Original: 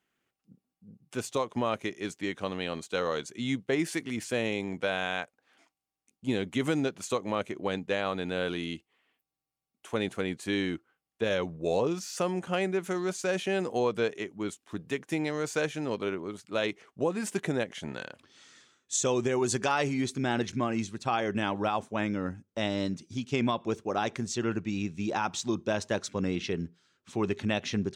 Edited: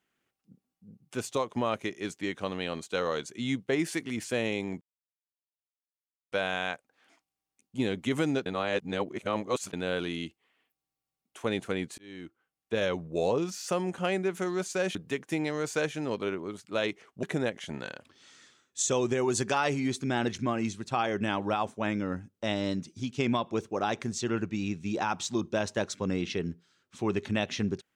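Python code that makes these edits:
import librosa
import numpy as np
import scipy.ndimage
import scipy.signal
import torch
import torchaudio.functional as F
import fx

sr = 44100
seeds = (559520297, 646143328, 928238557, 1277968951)

y = fx.edit(x, sr, fx.insert_silence(at_s=4.81, length_s=1.51),
    fx.reverse_span(start_s=6.95, length_s=1.27),
    fx.fade_in_span(start_s=10.47, length_s=0.8),
    fx.cut(start_s=13.44, length_s=1.31),
    fx.cut(start_s=17.03, length_s=0.34), tone=tone)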